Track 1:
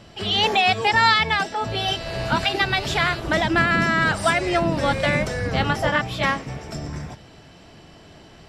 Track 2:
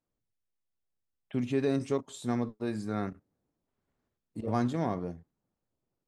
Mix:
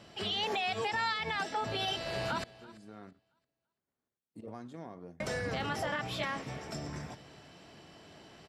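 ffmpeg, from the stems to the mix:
-filter_complex "[0:a]alimiter=limit=0.126:level=0:latency=1:release=59,volume=0.473,asplit=3[s0][s1][s2];[s0]atrim=end=2.44,asetpts=PTS-STARTPTS,afade=t=out:st=2.436:d=0.004:c=hsin[s3];[s1]atrim=start=2.44:end=5.2,asetpts=PTS-STARTPTS,volume=0[s4];[s2]atrim=start=5.2,asetpts=PTS-STARTPTS,afade=t=in:d=0.004:c=hsin[s5];[s3][s4][s5]concat=n=3:v=0:a=1,asplit=2[s6][s7];[s7]volume=0.0944[s8];[1:a]acompressor=threshold=0.0251:ratio=12,volume=0.447,afade=t=in:st=2.57:d=0.74:silence=0.251189[s9];[s8]aecho=0:1:336|672|1008|1344:1|0.27|0.0729|0.0197[s10];[s6][s9][s10]amix=inputs=3:normalize=0,highpass=f=170:p=1"

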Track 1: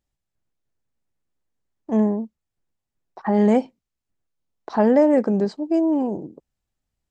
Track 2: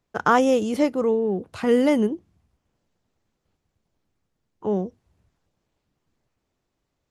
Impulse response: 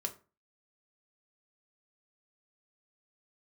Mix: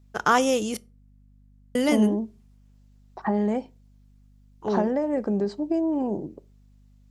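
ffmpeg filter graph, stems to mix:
-filter_complex "[0:a]acompressor=threshold=0.0794:ratio=6,volume=0.841,asplit=2[s0][s1];[s1]volume=0.266[s2];[1:a]highshelf=f=2400:g=11,volume=0.531,asplit=3[s3][s4][s5];[s3]atrim=end=0.77,asetpts=PTS-STARTPTS,afade=t=out:st=0.766:d=0.004:c=hsin[s6];[s4]atrim=start=0.77:end=1.75,asetpts=PTS-STARTPTS,volume=0[s7];[s5]atrim=start=1.75,asetpts=PTS-STARTPTS,afade=t=in:d=0.004:c=hsin[s8];[s6][s7][s8]concat=n=3:v=0:a=1,asplit=2[s9][s10];[s10]volume=0.266[s11];[2:a]atrim=start_sample=2205[s12];[s2][s11]amix=inputs=2:normalize=0[s13];[s13][s12]afir=irnorm=-1:irlink=0[s14];[s0][s9][s14]amix=inputs=3:normalize=0,aeval=exprs='val(0)+0.002*(sin(2*PI*50*n/s)+sin(2*PI*2*50*n/s)/2+sin(2*PI*3*50*n/s)/3+sin(2*PI*4*50*n/s)/4+sin(2*PI*5*50*n/s)/5)':c=same"

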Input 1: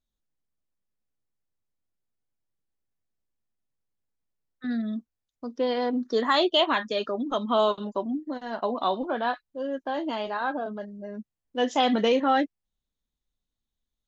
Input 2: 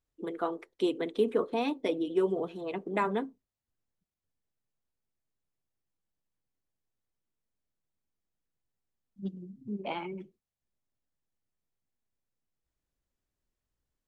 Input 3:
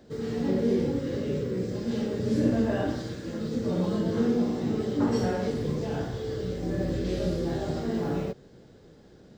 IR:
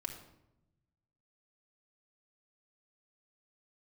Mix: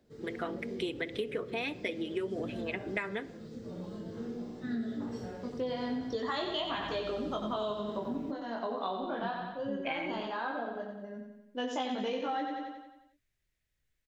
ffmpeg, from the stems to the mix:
-filter_complex "[0:a]flanger=delay=19.5:depth=6.6:speed=0.17,volume=0.75,asplit=2[s0][s1];[s1]volume=0.501[s2];[1:a]equalizer=f=125:t=o:w=1:g=5,equalizer=f=250:t=o:w=1:g=-9,equalizer=f=1000:t=o:w=1:g=-11,equalizer=f=2000:t=o:w=1:g=12,volume=1.06,asplit=2[s3][s4];[s4]volume=0.316[s5];[2:a]volume=0.178[s6];[3:a]atrim=start_sample=2205[s7];[s5][s7]afir=irnorm=-1:irlink=0[s8];[s2]aecho=0:1:90|180|270|360|450|540|630|720:1|0.54|0.292|0.157|0.085|0.0459|0.0248|0.0134[s9];[s0][s3][s6][s8][s9]amix=inputs=5:normalize=0,acompressor=threshold=0.0282:ratio=6"

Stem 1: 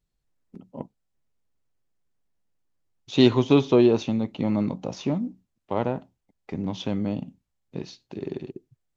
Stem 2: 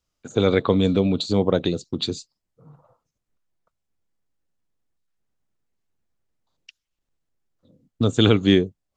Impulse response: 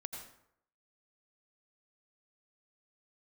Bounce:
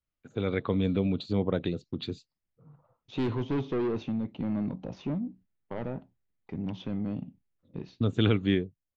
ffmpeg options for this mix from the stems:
-filter_complex "[0:a]agate=range=0.0224:threshold=0.00501:ratio=3:detection=peak,asoftclip=type=tanh:threshold=0.0944,volume=0.562[s0];[1:a]equalizer=f=2100:t=o:w=1.3:g=5.5,volume=0.376,asplit=2[s1][s2];[s2]apad=whole_len=399969[s3];[s0][s3]sidechaincompress=threshold=0.00891:ratio=8:attack=16:release=137[s4];[s4][s1]amix=inputs=2:normalize=0,lowpass=2500,equalizer=f=940:w=0.33:g=-6.5,dynaudnorm=f=100:g=13:m=1.58"

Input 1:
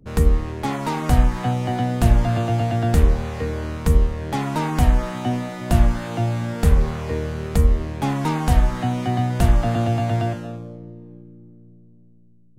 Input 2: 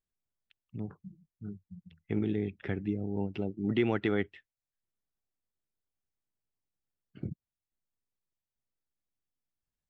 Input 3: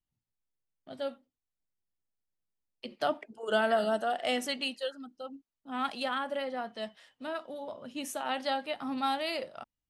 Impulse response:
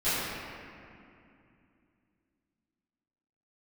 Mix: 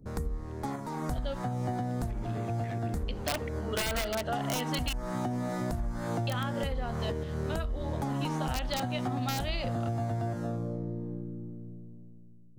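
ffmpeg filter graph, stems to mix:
-filter_complex "[0:a]equalizer=f=2800:t=o:w=0.79:g=-13.5,acompressor=threshold=0.0141:ratio=2,volume=0.794[s0];[1:a]tiltshelf=f=970:g=-5,asoftclip=type=hard:threshold=0.0224,volume=0.299,asplit=2[s1][s2];[2:a]lowpass=f=4000:t=q:w=1.5,aeval=exprs='(mod(10*val(0)+1,2)-1)/10':c=same,adelay=250,volume=1.12,asplit=3[s3][s4][s5];[s3]atrim=end=4.93,asetpts=PTS-STARTPTS,afade=t=out:st=4.926:d=0.004:c=hsin[s6];[s4]atrim=start=4.93:end=6.27,asetpts=PTS-STARTPTS,volume=0[s7];[s5]atrim=start=6.27,asetpts=PTS-STARTPTS,afade=t=in:d=0.004:c=hsin[s8];[s6][s7][s8]concat=n=3:v=0:a=1[s9];[s2]apad=whole_len=555205[s10];[s0][s10]sidechaincompress=threshold=0.00251:ratio=5:attack=5.2:release=328[s11];[s11][s1]amix=inputs=2:normalize=0,dynaudnorm=f=490:g=5:m=2.24,alimiter=limit=0.1:level=0:latency=1:release=231,volume=1[s12];[s9][s12]amix=inputs=2:normalize=0,acompressor=threshold=0.0398:ratio=6"

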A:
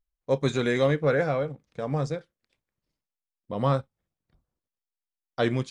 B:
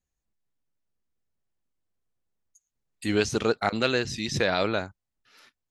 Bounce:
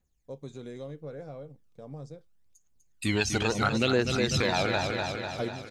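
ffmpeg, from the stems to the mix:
-filter_complex "[0:a]equalizer=f=1800:w=0.78:g=-12.5,acompressor=threshold=0.0447:ratio=2.5,volume=0.841[s0];[1:a]aphaser=in_gain=1:out_gain=1:delay=1.4:decay=0.65:speed=0.75:type=triangular,volume=1.19,asplit=3[s1][s2][s3];[s2]volume=0.447[s4];[s3]apad=whole_len=251701[s5];[s0][s5]sidechaingate=range=0.316:threshold=0.00224:ratio=16:detection=peak[s6];[s4]aecho=0:1:248|496|744|992|1240|1488|1736|1984|2232:1|0.58|0.336|0.195|0.113|0.0656|0.0381|0.0221|0.0128[s7];[s6][s1][s7]amix=inputs=3:normalize=0,acompressor=threshold=0.0631:ratio=2.5"

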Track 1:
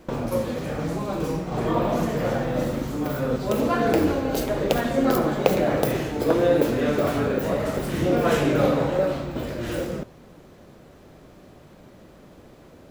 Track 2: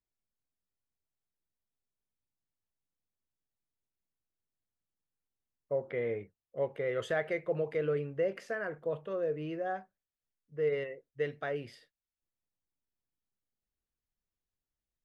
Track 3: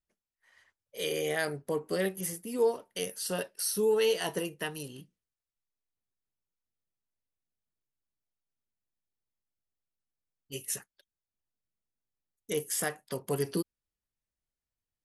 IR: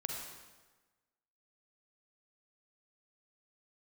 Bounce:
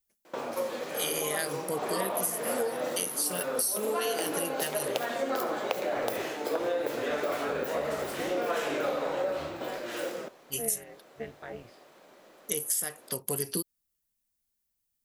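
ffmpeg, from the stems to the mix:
-filter_complex "[0:a]highpass=500,adelay=250,volume=0.794[s0];[1:a]tremolo=f=230:d=0.889,volume=0.75[s1];[2:a]aemphasis=mode=production:type=75kf,volume=0.891[s2];[s0][s1][s2]amix=inputs=3:normalize=0,acompressor=threshold=0.0501:ratio=10"

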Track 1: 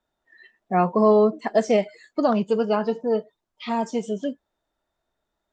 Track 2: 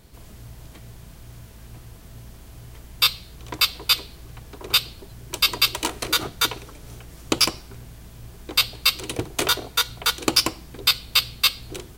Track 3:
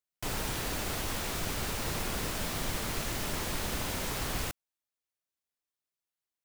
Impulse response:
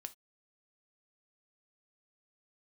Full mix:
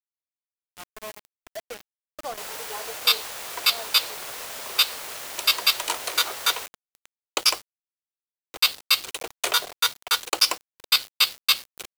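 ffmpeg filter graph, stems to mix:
-filter_complex "[0:a]asplit=2[s0][s1];[s1]adelay=2.4,afreqshift=-2.1[s2];[s0][s2]amix=inputs=2:normalize=1,volume=0.376,afade=t=in:st=1.46:d=0.64:silence=0.334965[s3];[1:a]adelay=50,volume=0.891[s4];[2:a]adelay=2150,volume=0.944[s5];[s3][s4][s5]amix=inputs=3:normalize=0,highpass=f=490:w=0.5412,highpass=f=490:w=1.3066,acrusher=bits=5:mix=0:aa=0.000001"

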